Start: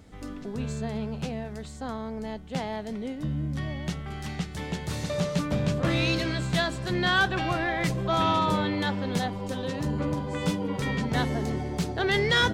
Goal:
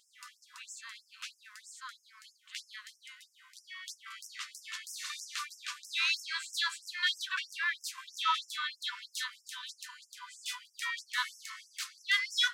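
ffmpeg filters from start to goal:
-af "afftfilt=real='re*gte(b*sr/1024,940*pow(5200/940,0.5+0.5*sin(2*PI*3.1*pts/sr)))':imag='im*gte(b*sr/1024,940*pow(5200/940,0.5+0.5*sin(2*PI*3.1*pts/sr)))':win_size=1024:overlap=0.75"

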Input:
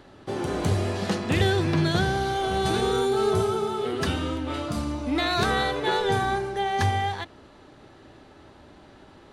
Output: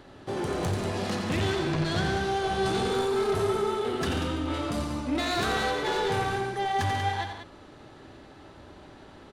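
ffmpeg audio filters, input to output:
-filter_complex "[0:a]asoftclip=type=tanh:threshold=-24.5dB,asettb=1/sr,asplit=3[a][b][c];[a]atrim=end=1.404[d];[b]atrim=start=1.4:end=2.9,asetpts=PTS-STARTPTS,afade=t=in:d=0.004:c=qsin,afade=t=out:st=1.496:d=0.004:c=qsin,lowpass=10k[e];[c]atrim=start=2.896[f];[d][e]acrossfade=d=0.004:c1=hsin:c2=qsin[g];[g][f]acrossfade=d=0.004:c1=qsin:c2=hsin,aecho=1:1:87.46|139.9|189.5:0.447|0.251|0.355"

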